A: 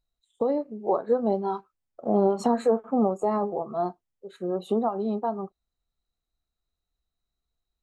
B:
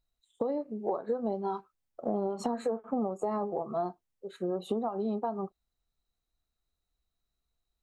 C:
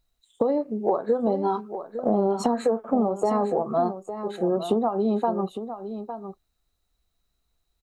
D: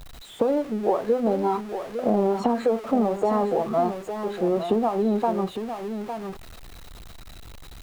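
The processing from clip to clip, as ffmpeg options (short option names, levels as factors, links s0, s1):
-af "acompressor=threshold=0.0398:ratio=6"
-af "aecho=1:1:857:0.299,volume=2.66"
-filter_complex "[0:a]aeval=exprs='val(0)+0.5*0.0188*sgn(val(0))':c=same,acrossover=split=3600[s0][s1];[s1]acompressor=threshold=0.00355:ratio=4:attack=1:release=60[s2];[s0][s2]amix=inputs=2:normalize=0"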